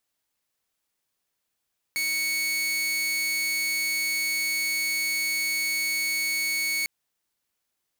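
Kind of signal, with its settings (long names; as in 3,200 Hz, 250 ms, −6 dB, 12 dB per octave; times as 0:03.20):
tone saw 2,220 Hz −22 dBFS 4.90 s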